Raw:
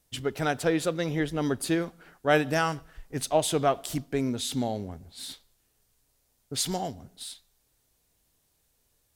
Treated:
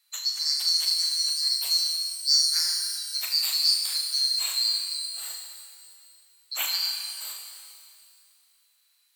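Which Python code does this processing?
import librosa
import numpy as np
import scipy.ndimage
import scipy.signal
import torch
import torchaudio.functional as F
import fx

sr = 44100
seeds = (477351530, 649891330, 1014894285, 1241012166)

p1 = fx.band_swap(x, sr, width_hz=4000)
p2 = scipy.signal.sosfilt(scipy.signal.butter(2, 1300.0, 'highpass', fs=sr, output='sos'), p1)
p3 = fx.rider(p2, sr, range_db=10, speed_s=0.5)
p4 = p2 + (p3 * librosa.db_to_amplitude(-1.0))
p5 = fx.room_flutter(p4, sr, wall_m=6.4, rt60_s=0.34)
p6 = fx.rev_shimmer(p5, sr, seeds[0], rt60_s=2.3, semitones=12, shimmer_db=-8, drr_db=2.5)
y = p6 * librosa.db_to_amplitude(-6.5)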